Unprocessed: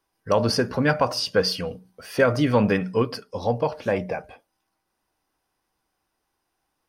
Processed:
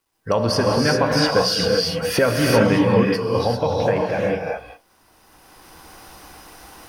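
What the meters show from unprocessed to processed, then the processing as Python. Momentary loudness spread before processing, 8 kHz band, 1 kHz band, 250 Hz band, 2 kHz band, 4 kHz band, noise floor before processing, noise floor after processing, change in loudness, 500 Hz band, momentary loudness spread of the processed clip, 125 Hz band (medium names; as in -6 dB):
11 LU, +8.0 dB, +4.5 dB, +4.5 dB, +4.5 dB, +6.5 dB, -78 dBFS, -59 dBFS, +4.5 dB, +5.0 dB, 7 LU, +5.0 dB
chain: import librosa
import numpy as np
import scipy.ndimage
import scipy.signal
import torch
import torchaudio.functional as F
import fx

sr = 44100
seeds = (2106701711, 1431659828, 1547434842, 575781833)

y = fx.recorder_agc(x, sr, target_db=-11.5, rise_db_per_s=17.0, max_gain_db=30)
y = fx.quant_dither(y, sr, seeds[0], bits=12, dither='none')
y = fx.rev_gated(y, sr, seeds[1], gate_ms=420, shape='rising', drr_db=-1.5)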